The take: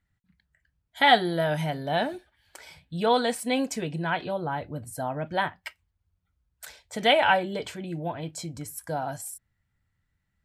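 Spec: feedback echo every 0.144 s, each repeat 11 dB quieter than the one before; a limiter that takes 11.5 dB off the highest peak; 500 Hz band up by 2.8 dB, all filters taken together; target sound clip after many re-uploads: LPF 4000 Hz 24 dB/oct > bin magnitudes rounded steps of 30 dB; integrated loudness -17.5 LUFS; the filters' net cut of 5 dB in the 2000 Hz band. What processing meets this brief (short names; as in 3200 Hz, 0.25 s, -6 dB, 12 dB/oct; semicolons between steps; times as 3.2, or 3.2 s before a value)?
bell 500 Hz +4 dB; bell 2000 Hz -6.5 dB; limiter -17 dBFS; LPF 4000 Hz 24 dB/oct; feedback echo 0.144 s, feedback 28%, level -11 dB; bin magnitudes rounded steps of 30 dB; gain +12.5 dB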